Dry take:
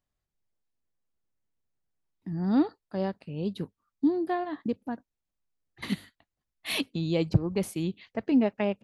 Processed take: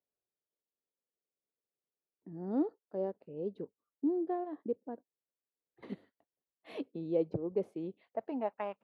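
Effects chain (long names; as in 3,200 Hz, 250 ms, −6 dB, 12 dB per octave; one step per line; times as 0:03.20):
band-pass filter sweep 460 Hz → 1,100 Hz, 0:07.74–0:08.72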